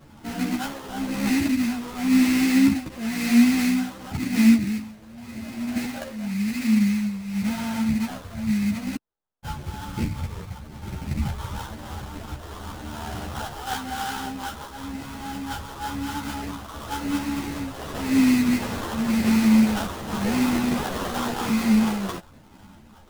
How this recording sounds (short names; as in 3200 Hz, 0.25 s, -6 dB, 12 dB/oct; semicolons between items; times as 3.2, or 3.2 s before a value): phasing stages 12, 0.94 Hz, lowest notch 240–2600 Hz; aliases and images of a low sample rate 2300 Hz, jitter 20%; a shimmering, thickened sound